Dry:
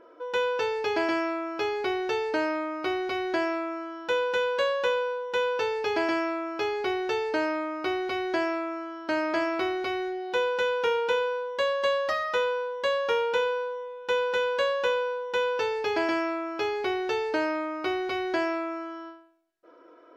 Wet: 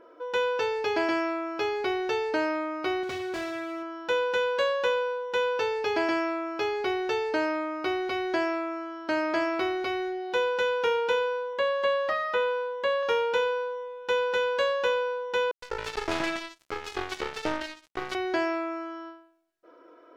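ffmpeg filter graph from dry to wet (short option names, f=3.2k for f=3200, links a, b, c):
-filter_complex "[0:a]asettb=1/sr,asplit=3[a][b][c];[a]atrim=end=3.034[d];[b]atrim=start=3.03:end=3.83,asetpts=PTS-STARTPTS,afade=t=in:d=0.004:c=qsin,afade=t=out:st=0.796:d=0.004:c=qsin,equalizer=f=110:w=1.2:g=14.5,asoftclip=type=hard:threshold=-31dB,highpass=56[e];[c]atrim=start=3.826[f];[d][e]acrossfade=d=0.004:c1=hsin:c2=qsin[g];[g][f]acrossfade=d=0.004:c1=qsin:c2=hsin,asettb=1/sr,asplit=3[h][i][j];[h]atrim=end=11.534[k];[i]atrim=start=11.53:end=13.03,asetpts=PTS-STARTPTS,afade=t=in:d=0.004:c=qsin,afade=t=out:st=1.496:d=0.004:c=qsin,highpass=81,acrossover=split=3600[l][m];[m]acompressor=threshold=-51dB:ratio=4:attack=1:release=60[n];[l][n]amix=inputs=2:normalize=0,equalizer=f=5.7k:w=2.9:g=-4.5[o];[j]atrim=start=13.026[p];[k][o]acrossfade=d=0.004:c1=hsin:c2=qsin[q];[q][p]acrossfade=d=0.004:c1=qsin:c2=hsin,asettb=1/sr,asplit=3[r][s][t];[r]atrim=end=15.514[u];[s]atrim=start=15.51:end=18.15,asetpts=PTS-STARTPTS,afade=t=in:d=0.004:c=qsin,afade=t=out:st=2.636:d=0.004:c=qsin,highpass=f=150:w=0.5412,highpass=f=150:w=1.3066,acrossover=split=910|3800[v][w][x];[v]adelay=110[y];[w]adelay=270[z];[y][z][x]amix=inputs=3:normalize=0,atrim=end_sample=116424,acrusher=bits=3:mix=0:aa=0.5[aa];[t]atrim=start=18.146[ab];[u][aa]acrossfade=d=0.004:c1=hsin:c2=qsin[ac];[ac][ab]acrossfade=d=0.004:c1=qsin:c2=hsin"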